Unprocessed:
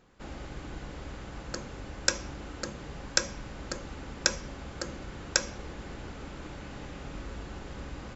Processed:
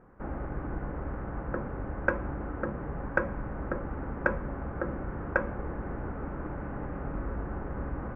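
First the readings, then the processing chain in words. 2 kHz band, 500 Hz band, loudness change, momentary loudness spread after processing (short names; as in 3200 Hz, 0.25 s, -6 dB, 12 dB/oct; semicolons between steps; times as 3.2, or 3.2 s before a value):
+2.5 dB, +6.0 dB, +0.5 dB, 6 LU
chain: inverse Chebyshev low-pass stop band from 4000 Hz, stop band 50 dB; gain +6 dB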